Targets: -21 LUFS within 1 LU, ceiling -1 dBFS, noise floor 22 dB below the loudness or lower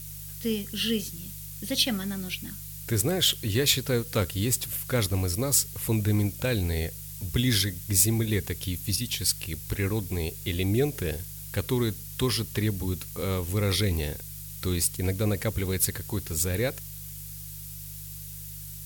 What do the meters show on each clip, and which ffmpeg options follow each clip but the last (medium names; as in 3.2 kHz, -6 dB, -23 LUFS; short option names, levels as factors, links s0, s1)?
hum 50 Hz; highest harmonic 150 Hz; hum level -43 dBFS; noise floor -40 dBFS; noise floor target -49 dBFS; loudness -27.0 LUFS; peak level -6.5 dBFS; loudness target -21.0 LUFS
-> -af "bandreject=f=50:t=h:w=4,bandreject=f=100:t=h:w=4,bandreject=f=150:t=h:w=4"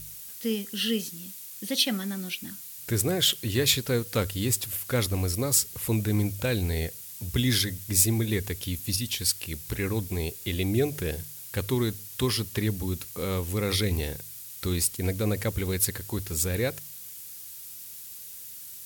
hum not found; noise floor -43 dBFS; noise floor target -50 dBFS
-> -af "afftdn=nr=7:nf=-43"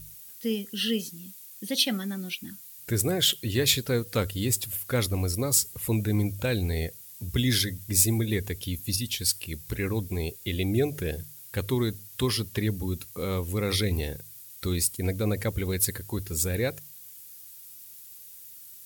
noise floor -47 dBFS; noise floor target -50 dBFS
-> -af "afftdn=nr=6:nf=-47"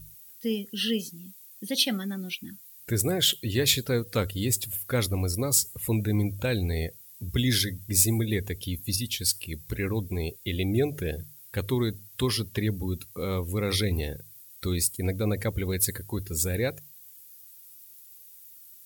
noise floor -50 dBFS; loudness -27.5 LUFS; peak level -6.0 dBFS; loudness target -21.0 LUFS
-> -af "volume=2.11,alimiter=limit=0.891:level=0:latency=1"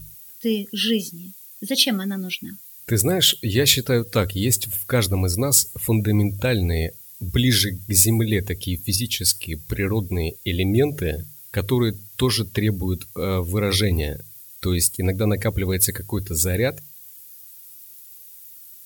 loudness -21.0 LUFS; peak level -1.0 dBFS; noise floor -44 dBFS